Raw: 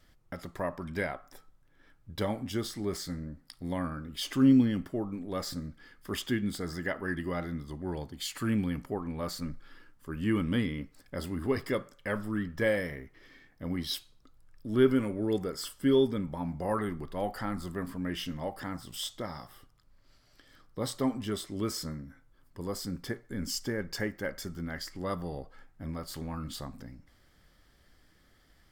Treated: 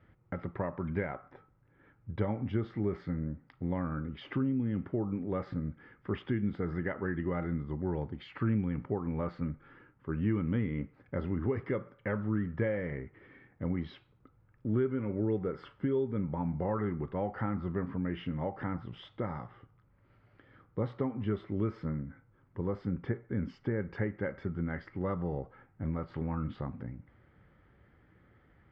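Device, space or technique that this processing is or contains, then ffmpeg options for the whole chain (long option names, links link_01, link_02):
bass amplifier: -af "acompressor=threshold=-33dB:ratio=4,highpass=73,equalizer=frequency=110:width_type=q:width=4:gain=5,equalizer=frequency=270:width_type=q:width=4:gain=-4,equalizer=frequency=660:width_type=q:width=4:gain=-7,equalizer=frequency=1100:width_type=q:width=4:gain=-5,equalizer=frequency=1700:width_type=q:width=4:gain=-6,lowpass=frequency=2000:width=0.5412,lowpass=frequency=2000:width=1.3066,volume=5.5dB"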